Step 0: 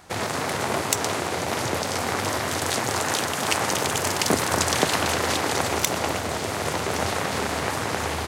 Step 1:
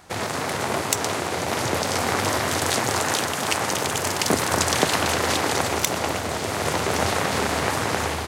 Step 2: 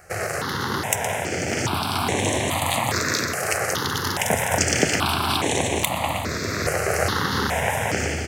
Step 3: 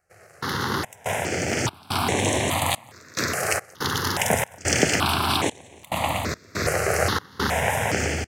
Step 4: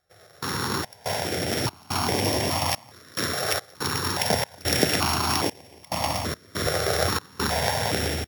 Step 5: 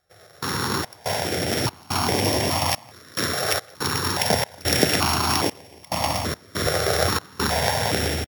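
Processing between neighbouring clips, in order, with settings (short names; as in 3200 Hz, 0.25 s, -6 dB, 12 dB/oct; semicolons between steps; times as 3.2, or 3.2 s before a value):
AGC gain up to 3 dB
step phaser 2.4 Hz 960–4800 Hz; gain +3.5 dB
step gate "..xx.xxx.xxxx" 71 bpm -24 dB
sample sorter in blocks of 8 samples; gain -1.5 dB
speakerphone echo 0.16 s, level -28 dB; gain +2.5 dB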